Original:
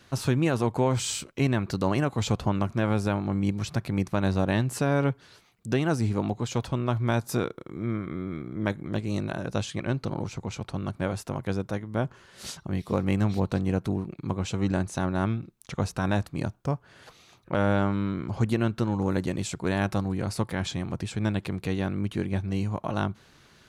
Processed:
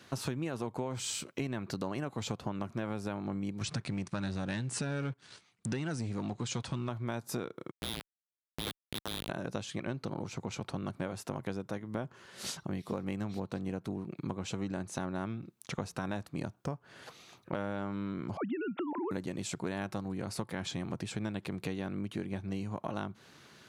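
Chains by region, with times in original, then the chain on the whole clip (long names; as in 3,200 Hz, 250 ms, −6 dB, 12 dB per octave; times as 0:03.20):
0:03.61–0:06.89: parametric band 510 Hz −6 dB 2.4 octaves + leveller curve on the samples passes 2 + linear-phase brick-wall low-pass 10,000 Hz
0:07.71–0:09.29: mu-law and A-law mismatch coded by mu + voice inversion scrambler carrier 3,800 Hz + comparator with hysteresis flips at −20.5 dBFS
0:18.37–0:19.11: three sine waves on the formant tracks + downward compressor 1.5 to 1, threshold −32 dBFS
whole clip: Bessel high-pass filter 180 Hz, order 2; low-shelf EQ 230 Hz +4 dB; downward compressor 6 to 1, threshold −33 dBFS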